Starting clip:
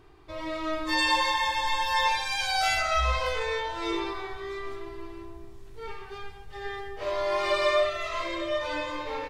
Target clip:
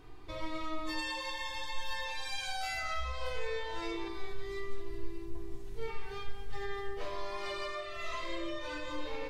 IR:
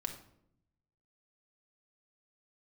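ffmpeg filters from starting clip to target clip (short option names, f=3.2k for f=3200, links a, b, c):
-filter_complex "[0:a]asetnsamples=n=441:p=0,asendcmd='4.08 equalizer g -12.5;5.35 equalizer g -3.5',equalizer=f=1k:w=0.37:g=-3,acompressor=threshold=-38dB:ratio=6[a];[1:a]atrim=start_sample=2205,atrim=end_sample=6174[b];[a][b]afir=irnorm=-1:irlink=0,volume=2.5dB"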